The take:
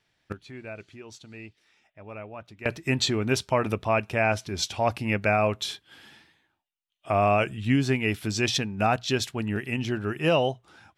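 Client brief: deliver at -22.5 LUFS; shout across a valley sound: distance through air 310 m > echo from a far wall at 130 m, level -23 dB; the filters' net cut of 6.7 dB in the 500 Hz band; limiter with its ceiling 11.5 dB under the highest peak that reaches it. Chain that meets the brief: peaking EQ 500 Hz -8 dB; peak limiter -24 dBFS; distance through air 310 m; echo from a far wall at 130 m, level -23 dB; trim +14 dB

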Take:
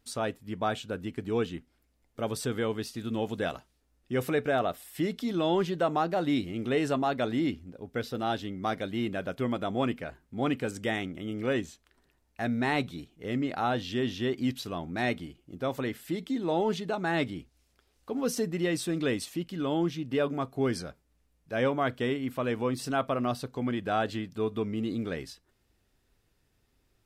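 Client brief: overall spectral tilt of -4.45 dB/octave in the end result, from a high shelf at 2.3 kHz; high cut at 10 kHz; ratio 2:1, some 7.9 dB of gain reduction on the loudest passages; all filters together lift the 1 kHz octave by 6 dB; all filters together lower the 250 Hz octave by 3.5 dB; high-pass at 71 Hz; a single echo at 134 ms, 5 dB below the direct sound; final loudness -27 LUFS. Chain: high-pass 71 Hz; low-pass 10 kHz; peaking EQ 250 Hz -5 dB; peaking EQ 1 kHz +8 dB; treble shelf 2.3 kHz +4.5 dB; compression 2:1, threshold -33 dBFS; delay 134 ms -5 dB; trim +7 dB

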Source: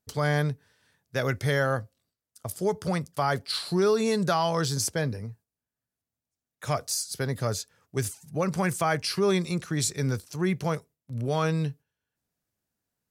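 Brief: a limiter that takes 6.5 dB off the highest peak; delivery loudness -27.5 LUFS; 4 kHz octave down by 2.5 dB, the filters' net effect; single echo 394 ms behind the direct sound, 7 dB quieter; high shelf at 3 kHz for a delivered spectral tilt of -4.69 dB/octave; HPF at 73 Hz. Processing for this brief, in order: high-pass 73 Hz; treble shelf 3 kHz +4.5 dB; peaking EQ 4 kHz -7 dB; peak limiter -17.5 dBFS; delay 394 ms -7 dB; trim +1.5 dB

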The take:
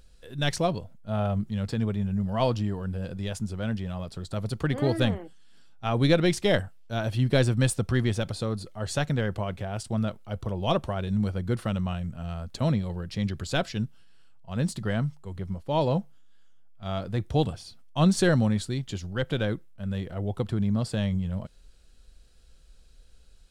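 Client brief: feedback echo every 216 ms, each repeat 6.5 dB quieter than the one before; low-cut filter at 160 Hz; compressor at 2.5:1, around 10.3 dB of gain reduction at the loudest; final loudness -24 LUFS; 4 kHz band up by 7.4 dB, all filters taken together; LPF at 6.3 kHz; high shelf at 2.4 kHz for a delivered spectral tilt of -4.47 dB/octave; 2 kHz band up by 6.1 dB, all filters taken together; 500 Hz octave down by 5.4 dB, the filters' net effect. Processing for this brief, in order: high-pass 160 Hz; low-pass 6.3 kHz; peaking EQ 500 Hz -7.5 dB; peaking EQ 2 kHz +5 dB; treble shelf 2.4 kHz +6 dB; peaking EQ 4 kHz +3 dB; compression 2.5:1, threshold -34 dBFS; feedback delay 216 ms, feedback 47%, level -6.5 dB; trim +11.5 dB

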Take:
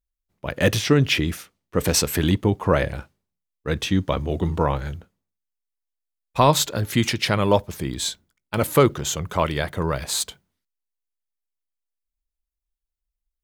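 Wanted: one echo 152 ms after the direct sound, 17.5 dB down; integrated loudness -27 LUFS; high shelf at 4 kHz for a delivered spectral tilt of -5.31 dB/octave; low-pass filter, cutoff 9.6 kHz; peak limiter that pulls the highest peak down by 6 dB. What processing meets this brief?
low-pass 9.6 kHz; treble shelf 4 kHz -8 dB; peak limiter -10 dBFS; delay 152 ms -17.5 dB; trim -2 dB

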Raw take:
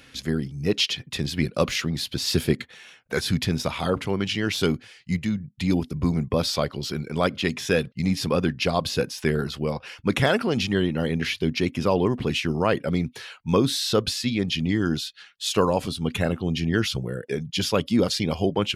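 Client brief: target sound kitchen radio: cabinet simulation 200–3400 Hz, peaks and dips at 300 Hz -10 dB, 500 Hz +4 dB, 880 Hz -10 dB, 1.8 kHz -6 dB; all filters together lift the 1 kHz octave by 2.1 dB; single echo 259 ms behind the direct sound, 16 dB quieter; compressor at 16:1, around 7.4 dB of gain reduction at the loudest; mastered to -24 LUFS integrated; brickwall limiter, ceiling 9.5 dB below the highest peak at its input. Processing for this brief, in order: peaking EQ 1 kHz +7.5 dB; compression 16:1, threshold -20 dBFS; peak limiter -18 dBFS; cabinet simulation 200–3400 Hz, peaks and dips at 300 Hz -10 dB, 500 Hz +4 dB, 880 Hz -10 dB, 1.8 kHz -6 dB; delay 259 ms -16 dB; trim +8.5 dB

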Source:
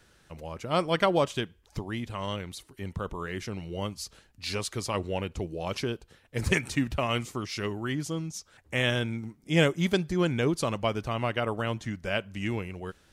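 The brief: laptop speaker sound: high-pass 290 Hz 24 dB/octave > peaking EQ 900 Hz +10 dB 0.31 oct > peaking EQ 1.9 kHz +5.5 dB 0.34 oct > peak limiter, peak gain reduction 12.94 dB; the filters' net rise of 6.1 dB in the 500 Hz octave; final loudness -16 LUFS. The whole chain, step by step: high-pass 290 Hz 24 dB/octave; peaking EQ 500 Hz +7 dB; peaking EQ 900 Hz +10 dB 0.31 oct; peaking EQ 1.9 kHz +5.5 dB 0.34 oct; trim +15.5 dB; peak limiter -2 dBFS

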